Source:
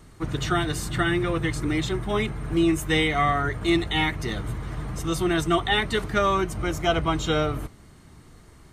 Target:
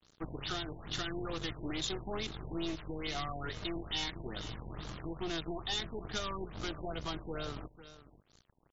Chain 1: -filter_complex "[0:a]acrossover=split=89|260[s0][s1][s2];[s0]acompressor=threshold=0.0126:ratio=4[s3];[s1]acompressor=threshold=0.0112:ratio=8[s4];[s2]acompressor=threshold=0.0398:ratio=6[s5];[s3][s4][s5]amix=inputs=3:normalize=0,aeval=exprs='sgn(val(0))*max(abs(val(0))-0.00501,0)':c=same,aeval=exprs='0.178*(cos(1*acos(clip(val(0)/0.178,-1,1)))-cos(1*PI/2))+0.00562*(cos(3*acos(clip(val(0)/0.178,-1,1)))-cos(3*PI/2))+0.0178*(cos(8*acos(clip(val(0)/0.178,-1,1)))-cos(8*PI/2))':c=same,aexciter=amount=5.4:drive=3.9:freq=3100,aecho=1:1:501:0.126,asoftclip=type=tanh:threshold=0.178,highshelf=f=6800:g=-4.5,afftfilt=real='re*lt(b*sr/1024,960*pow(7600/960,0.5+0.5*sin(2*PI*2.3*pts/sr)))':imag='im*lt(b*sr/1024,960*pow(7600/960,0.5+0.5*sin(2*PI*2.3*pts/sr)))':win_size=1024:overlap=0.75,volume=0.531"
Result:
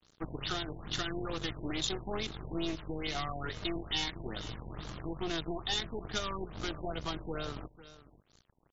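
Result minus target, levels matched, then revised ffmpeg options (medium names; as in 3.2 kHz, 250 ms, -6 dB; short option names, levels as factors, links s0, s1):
saturation: distortion -8 dB
-filter_complex "[0:a]acrossover=split=89|260[s0][s1][s2];[s0]acompressor=threshold=0.0126:ratio=4[s3];[s1]acompressor=threshold=0.0112:ratio=8[s4];[s2]acompressor=threshold=0.0398:ratio=6[s5];[s3][s4][s5]amix=inputs=3:normalize=0,aeval=exprs='sgn(val(0))*max(abs(val(0))-0.00501,0)':c=same,aeval=exprs='0.178*(cos(1*acos(clip(val(0)/0.178,-1,1)))-cos(1*PI/2))+0.00562*(cos(3*acos(clip(val(0)/0.178,-1,1)))-cos(3*PI/2))+0.0178*(cos(8*acos(clip(val(0)/0.178,-1,1)))-cos(8*PI/2))':c=same,aexciter=amount=5.4:drive=3.9:freq=3100,aecho=1:1:501:0.126,asoftclip=type=tanh:threshold=0.075,highshelf=f=6800:g=-4.5,afftfilt=real='re*lt(b*sr/1024,960*pow(7600/960,0.5+0.5*sin(2*PI*2.3*pts/sr)))':imag='im*lt(b*sr/1024,960*pow(7600/960,0.5+0.5*sin(2*PI*2.3*pts/sr)))':win_size=1024:overlap=0.75,volume=0.531"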